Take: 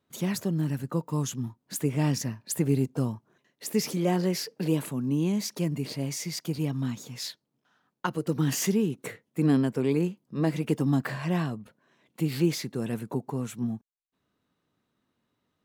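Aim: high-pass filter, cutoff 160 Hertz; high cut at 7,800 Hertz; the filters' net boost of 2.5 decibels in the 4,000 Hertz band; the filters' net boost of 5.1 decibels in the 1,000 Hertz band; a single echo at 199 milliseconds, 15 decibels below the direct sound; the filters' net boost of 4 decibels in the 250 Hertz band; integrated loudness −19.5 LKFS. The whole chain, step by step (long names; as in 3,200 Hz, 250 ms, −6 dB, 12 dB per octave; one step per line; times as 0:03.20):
high-pass filter 160 Hz
low-pass filter 7,800 Hz
parametric band 250 Hz +6 dB
parametric band 1,000 Hz +6 dB
parametric band 4,000 Hz +3.5 dB
single-tap delay 199 ms −15 dB
level +7 dB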